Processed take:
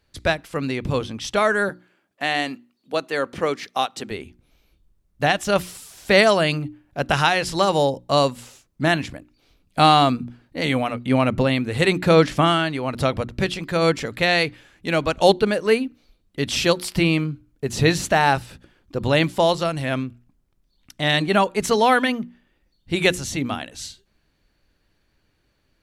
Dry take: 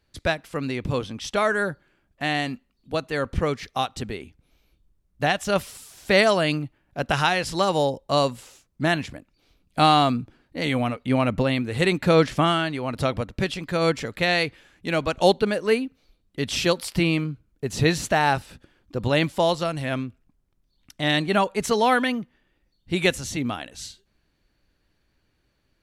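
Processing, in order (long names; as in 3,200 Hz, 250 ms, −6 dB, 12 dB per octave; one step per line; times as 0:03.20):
0:01.69–0:04.11: high-pass filter 260 Hz 12 dB per octave
mains-hum notches 60/120/180/240/300/360 Hz
level +3 dB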